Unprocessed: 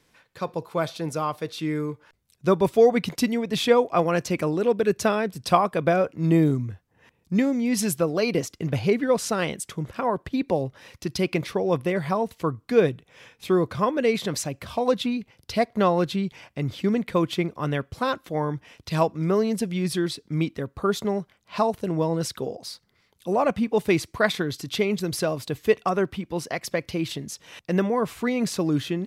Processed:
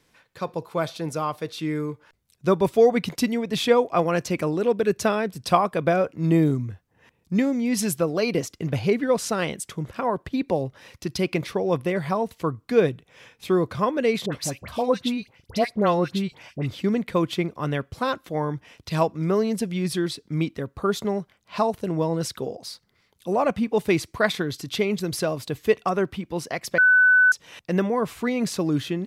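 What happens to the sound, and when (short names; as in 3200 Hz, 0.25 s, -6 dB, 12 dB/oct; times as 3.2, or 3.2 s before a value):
14.26–16.69 dispersion highs, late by 69 ms, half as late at 1600 Hz
26.78–27.32 bleep 1500 Hz -12.5 dBFS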